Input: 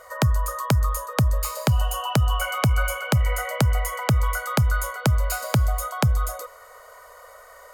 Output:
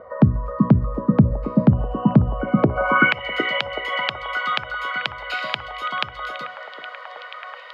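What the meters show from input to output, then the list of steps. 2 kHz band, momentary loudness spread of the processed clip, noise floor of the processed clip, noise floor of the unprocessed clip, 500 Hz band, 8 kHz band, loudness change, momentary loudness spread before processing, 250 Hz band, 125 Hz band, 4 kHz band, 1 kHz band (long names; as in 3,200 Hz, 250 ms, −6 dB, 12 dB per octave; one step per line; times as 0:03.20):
+7.5 dB, 17 LU, −39 dBFS, −47 dBFS, +4.0 dB, below −20 dB, +2.5 dB, 3 LU, +11.0 dB, +0.5 dB, +4.5 dB, +3.0 dB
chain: parametric band 6,500 Hz −2 dB
mains-hum notches 60/120/180/240/300/360/420 Hz
downward compressor, threshold −24 dBFS, peak gain reduction 8 dB
band-pass filter sweep 220 Hz → 3,200 Hz, 0:02.54–0:03.19
high-frequency loss of the air 350 metres
echo through a band-pass that steps 378 ms, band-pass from 240 Hz, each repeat 0.7 octaves, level −2 dB
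boost into a limiter +24 dB
level −1 dB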